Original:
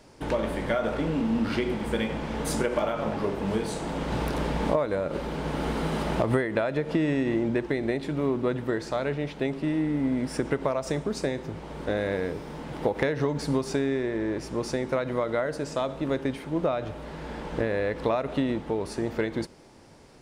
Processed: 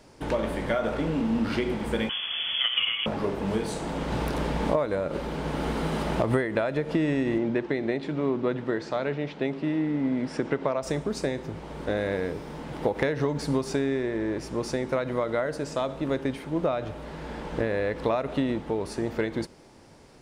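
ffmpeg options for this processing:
-filter_complex "[0:a]asettb=1/sr,asplit=3[a][b][c];[a]atrim=end=2.094[d];[b]atrim=start=2.09:end=3.06,asetpts=PTS-STARTPTS,afade=t=in:d=0.004:c=qsin,afade=t=out:st=0.966:d=0.004:c=qsin,lowpass=f=3k:t=q:w=0.5098,lowpass=f=3k:t=q:w=0.6013,lowpass=f=3k:t=q:w=0.9,lowpass=f=3k:t=q:w=2.563,afreqshift=-3500[e];[c]atrim=start=3.056[f];[d][e]acrossfade=d=0.004:c1=hsin:c2=qsin[g];[g][f]acrossfade=d=0.004:c1=qsin:c2=hsin,asettb=1/sr,asplit=3[h][i][j];[h]atrim=end=7.384[k];[i]atrim=start=7.38:end=10.83,asetpts=PTS-STARTPTS,afade=t=in:d=0.004:c=qsin,afade=t=out:st=3.446:d=0.004:c=qsin,highpass=120,lowpass=5.2k[l];[j]atrim=start=10.826[m];[k][l]acrossfade=d=0.004:c1=hsin:c2=qsin[n];[n][m]acrossfade=d=0.004:c1=qsin:c2=hsin"

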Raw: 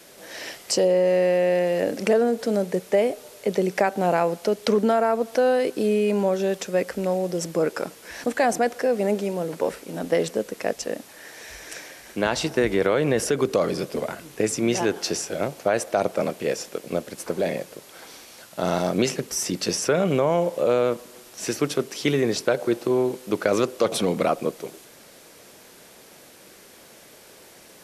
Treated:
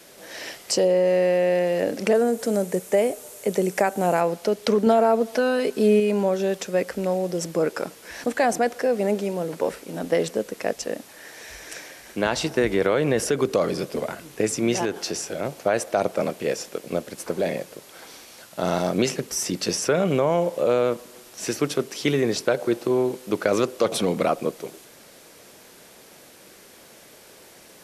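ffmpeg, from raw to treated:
-filter_complex "[0:a]asettb=1/sr,asplit=3[a][b][c];[a]atrim=end=2.144[d];[b]atrim=start=2.14:end=4.21,asetpts=PTS-STARTPTS,afade=t=in:d=0.004:c=qsin,afade=t=out:st=2.066:d=0.004:c=qsin,highshelf=f=6k:t=q:w=1.5:g=6.5[e];[c]atrim=start=4.206[f];[d][e]acrossfade=d=0.004:c1=hsin:c2=qsin[g];[g][f]acrossfade=d=0.004:c1=qsin:c2=hsin,asettb=1/sr,asplit=3[h][i][j];[h]atrim=end=4.864[k];[i]atrim=start=4.86:end=6,asetpts=PTS-STARTPTS,afade=t=in:d=0.004:c=qsin,afade=t=out:st=1.136:d=0.004:c=qsin,aecho=1:1:4.7:0.65,atrim=end_sample=50274[l];[j]atrim=start=5.996[m];[k][l]acrossfade=d=0.004:c1=hsin:c2=qsin[n];[n][m]acrossfade=d=0.004:c1=qsin:c2=hsin,asettb=1/sr,asplit=3[o][p][q];[o]atrim=end=14.854[r];[p]atrim=start=14.85:end=15.45,asetpts=PTS-STARTPTS,afade=t=in:d=0.004:c=qsin,afade=t=out:st=0.596:d=0.004:c=qsin,acompressor=threshold=-27dB:ratio=1.5:attack=3.2:release=140:knee=1:detection=peak[s];[q]atrim=start=15.446[t];[r][s]acrossfade=d=0.004:c1=hsin:c2=qsin[u];[u][t]acrossfade=d=0.004:c1=qsin:c2=hsin"

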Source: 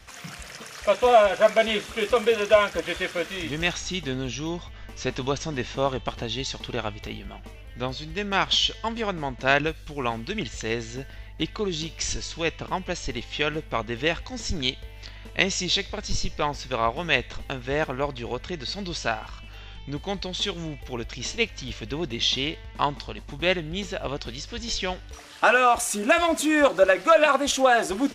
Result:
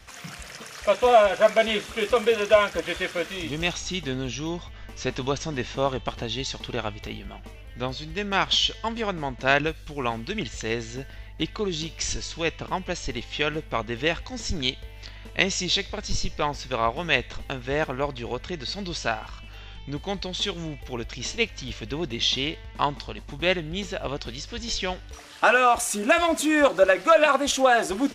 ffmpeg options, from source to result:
-filter_complex "[0:a]asettb=1/sr,asplit=3[a][b][c];[a]atrim=end=3.334[d];[b]atrim=start=3.33:end=3.87,asetpts=PTS-STARTPTS,afade=t=in:d=0.004:c=qsin,afade=t=out:st=0.536:d=0.004:c=qsin,equalizer=f=1.7k:t=o:w=0.39:g=-8[e];[c]atrim=start=3.866[f];[d][e]acrossfade=d=0.004:c1=hsin:c2=qsin[g];[g][f]acrossfade=d=0.004:c1=qsin:c2=hsin"

